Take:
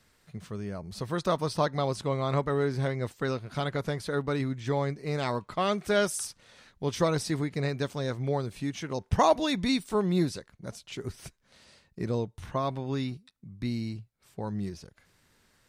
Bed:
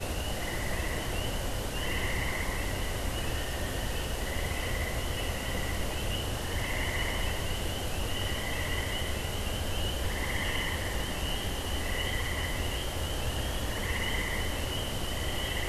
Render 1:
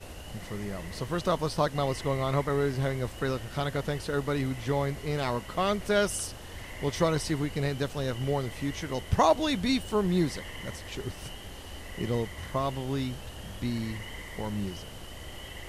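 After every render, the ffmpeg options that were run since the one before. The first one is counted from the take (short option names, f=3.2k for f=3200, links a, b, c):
-filter_complex "[1:a]volume=-10dB[a];[0:a][a]amix=inputs=2:normalize=0"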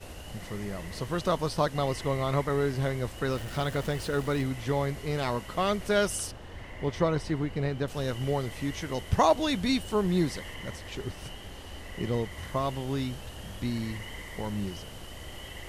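-filter_complex "[0:a]asettb=1/sr,asplit=3[a][b][c];[a]atrim=end=3.314[d];[b]atrim=start=3.31:end=4.43,asetpts=PTS-STARTPTS,afade=t=in:d=0.004:c=qsin,afade=t=out:st=1.116:d=0.004:c=qsin,aeval=exprs='val(0)+0.5*0.00841*sgn(val(0))':c=same[e];[c]atrim=start=4.426[f];[d][e]acrossfade=d=0.004:c1=hsin:c2=qsin[g];[g][f]acrossfade=d=0.004:c1=qsin:c2=hsin,asettb=1/sr,asplit=3[h][i][j];[h]atrim=end=6.314[k];[i]atrim=start=6.31:end=7.88,asetpts=PTS-STARTPTS,afade=t=in:d=0.004:c=qsin,afade=t=out:st=1.566:d=0.004:c=qsin,lowpass=f=2k:p=1[l];[j]atrim=start=7.876[m];[k][l]acrossfade=d=0.004:c1=hsin:c2=qsin[n];[n][m]acrossfade=d=0.004:c1=qsin:c2=hsin,asettb=1/sr,asplit=3[o][p][q];[o]atrim=end=10.544[r];[p]atrim=start=10.54:end=12.32,asetpts=PTS-STARTPTS,afade=t=in:d=0.004:c=qsin,afade=t=out:st=1.776:d=0.004:c=qsin,highshelf=f=6.3k:g=-4.5[s];[q]atrim=start=12.316[t];[r][s]acrossfade=d=0.004:c1=hsin:c2=qsin[u];[u][t]acrossfade=d=0.004:c1=qsin:c2=hsin"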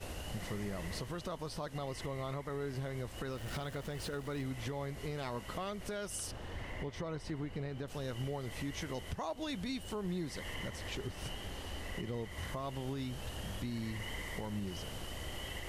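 -af "acompressor=threshold=-36dB:ratio=3,alimiter=level_in=5.5dB:limit=-24dB:level=0:latency=1:release=116,volume=-5.5dB"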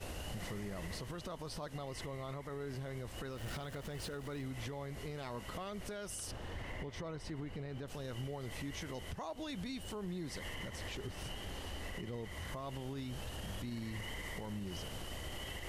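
-af "alimiter=level_in=10dB:limit=-24dB:level=0:latency=1:release=48,volume=-10dB"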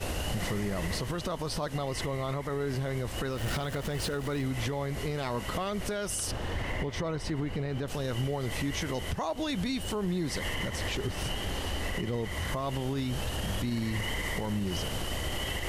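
-af "volume=11dB"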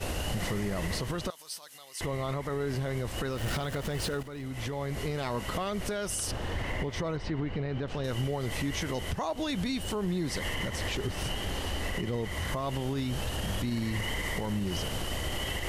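-filter_complex "[0:a]asettb=1/sr,asplit=3[a][b][c];[a]atrim=end=1.304[d];[b]atrim=start=1.3:end=2.01,asetpts=PTS-STARTPTS,afade=t=in:d=0.004:c=qsin,afade=t=out:st=0.706:d=0.004:c=qsin,aderivative[e];[c]atrim=start=2.006[f];[d][e]acrossfade=d=0.004:c1=hsin:c2=qsin[g];[g][f]acrossfade=d=0.004:c1=qsin:c2=hsin,asettb=1/sr,asplit=3[h][i][j];[h]atrim=end=7.174[k];[i]atrim=start=7.17:end=8.04,asetpts=PTS-STARTPTS,afade=t=in:d=0.004:c=qsin,afade=t=out:st=0.866:d=0.004:c=qsin,lowpass=4k[l];[j]atrim=start=8.036[m];[k][l]acrossfade=d=0.004:c1=hsin:c2=qsin[n];[n][m]acrossfade=d=0.004:c1=qsin:c2=hsin,asplit=2[o][p];[o]atrim=end=4.23,asetpts=PTS-STARTPTS,afade=t=out:st=4.226:d=0.004:c=hsin:silence=0.237137[q];[p]atrim=start=4.23,asetpts=PTS-STARTPTS,afade=t=in:d=0.71:silence=0.237137[r];[q][r]concat=n=2:v=0:a=1"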